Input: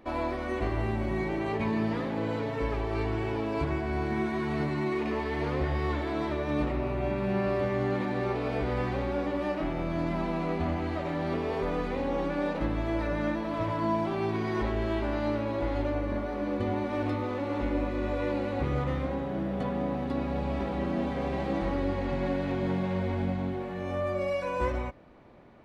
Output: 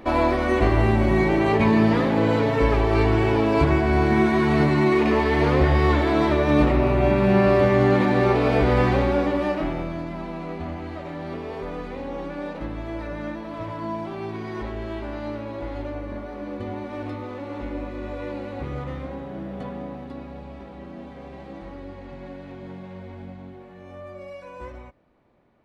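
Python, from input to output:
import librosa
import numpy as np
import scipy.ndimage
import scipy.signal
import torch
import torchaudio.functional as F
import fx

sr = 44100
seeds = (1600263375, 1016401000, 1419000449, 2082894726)

y = fx.gain(x, sr, db=fx.line((8.93, 11.0), (9.74, 4.5), (10.06, -2.0), (19.65, -2.0), (20.58, -9.0)))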